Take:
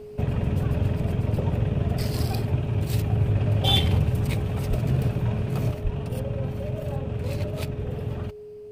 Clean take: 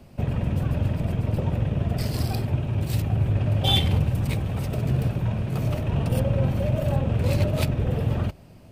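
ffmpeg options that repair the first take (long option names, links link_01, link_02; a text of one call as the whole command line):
ffmpeg -i in.wav -filter_complex "[0:a]bandreject=frequency=420:width=30,asplit=3[link_01][link_02][link_03];[link_01]afade=type=out:start_time=4.69:duration=0.02[link_04];[link_02]highpass=frequency=140:width=0.5412,highpass=frequency=140:width=1.3066,afade=type=in:start_time=4.69:duration=0.02,afade=type=out:start_time=4.81:duration=0.02[link_05];[link_03]afade=type=in:start_time=4.81:duration=0.02[link_06];[link_04][link_05][link_06]amix=inputs=3:normalize=0,asplit=3[link_07][link_08][link_09];[link_07]afade=type=out:start_time=5.83:duration=0.02[link_10];[link_08]highpass=frequency=140:width=0.5412,highpass=frequency=140:width=1.3066,afade=type=in:start_time=5.83:duration=0.02,afade=type=out:start_time=5.95:duration=0.02[link_11];[link_09]afade=type=in:start_time=5.95:duration=0.02[link_12];[link_10][link_11][link_12]amix=inputs=3:normalize=0,asetnsamples=nb_out_samples=441:pad=0,asendcmd='5.71 volume volume 6.5dB',volume=0dB" out.wav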